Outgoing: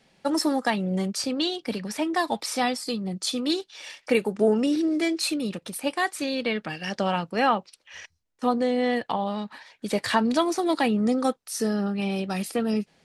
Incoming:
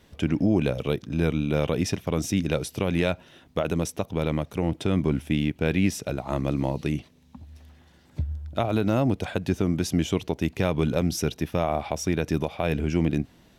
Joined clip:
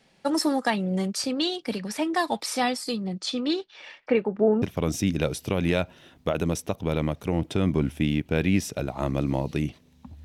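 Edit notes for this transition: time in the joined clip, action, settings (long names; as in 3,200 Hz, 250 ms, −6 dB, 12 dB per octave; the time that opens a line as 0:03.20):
outgoing
0:03.04–0:04.62: low-pass filter 6,500 Hz → 1,200 Hz
0:04.62: continue with incoming from 0:01.92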